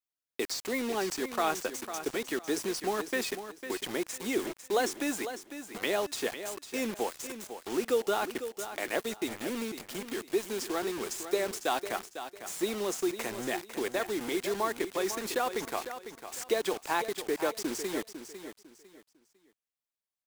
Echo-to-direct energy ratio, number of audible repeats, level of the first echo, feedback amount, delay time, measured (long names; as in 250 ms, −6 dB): −10.0 dB, 3, −10.5 dB, 27%, 501 ms